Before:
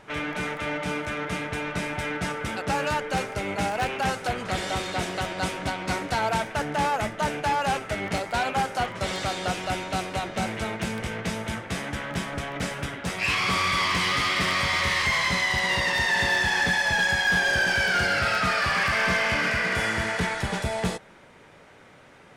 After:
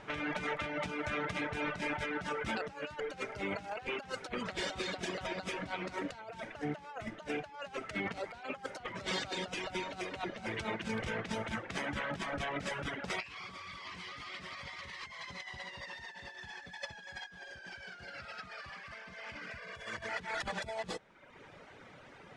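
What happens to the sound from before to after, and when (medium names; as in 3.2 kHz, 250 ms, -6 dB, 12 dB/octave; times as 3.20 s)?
19.58–20.09 s: comb 1.8 ms, depth 78%
whole clip: low-pass 6.4 kHz 12 dB/octave; reverb removal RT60 0.79 s; compressor with a negative ratio -33 dBFS, ratio -0.5; trim -6.5 dB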